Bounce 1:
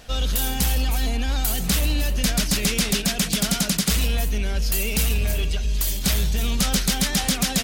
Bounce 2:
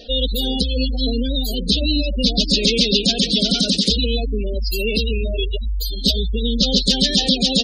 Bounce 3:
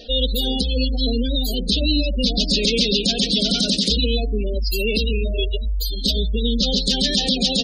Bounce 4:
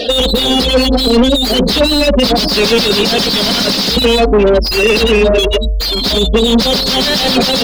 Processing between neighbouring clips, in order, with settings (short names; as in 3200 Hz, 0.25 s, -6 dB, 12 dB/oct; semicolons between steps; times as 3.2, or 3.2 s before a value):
graphic EQ 125/250/500/1000/4000 Hz -12/+9/+11/-10/+12 dB; spectral gate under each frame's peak -15 dB strong; gain +1.5 dB
de-hum 88.47 Hz, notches 10; limiter -7.5 dBFS, peak gain reduction 5.5 dB
dynamic EQ 5000 Hz, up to +7 dB, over -36 dBFS, Q 3.1; overdrive pedal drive 34 dB, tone 1400 Hz, clips at -2.5 dBFS; gain +3 dB